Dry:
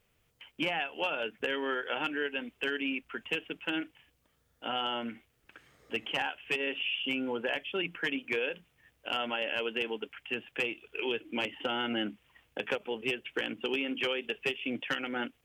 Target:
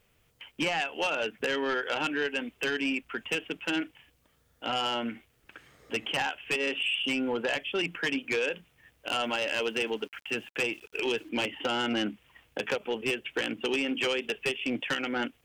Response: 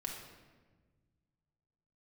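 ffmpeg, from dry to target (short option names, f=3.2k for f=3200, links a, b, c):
-filter_complex "[0:a]asettb=1/sr,asplit=3[a][b][c];[a]atrim=end=9.244[d];[b]atrim=start=9.24:end=11.29,asetpts=PTS-STARTPTS,afade=t=in:d=0.004:c=qsin,afade=t=out:st=2.046:d=0.004:c=qsin,aeval=exprs='val(0)*gte(abs(val(0)),0.00126)':c=same[e];[c]atrim=start=11.286[f];[d][e]acrossfade=d=0.004:c1=hsin:c2=qsin[g];[g][f]acrossfade=d=0.004:c1=qsin:c2=hsin,aeval=exprs='0.106*(cos(1*acos(clip(val(0)/0.106,-1,1)))-cos(1*PI/2))+0.0266*(cos(5*acos(clip(val(0)/0.106,-1,1)))-cos(5*PI/2))+0.00841*(cos(7*acos(clip(val(0)/0.106,-1,1)))-cos(7*PI/2))':c=same"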